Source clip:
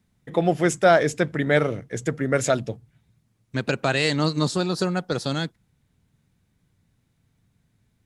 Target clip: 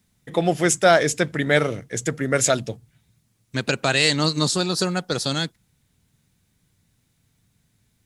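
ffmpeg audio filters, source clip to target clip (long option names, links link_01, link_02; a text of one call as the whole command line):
ffmpeg -i in.wav -af "highshelf=frequency=2900:gain=10.5" out.wav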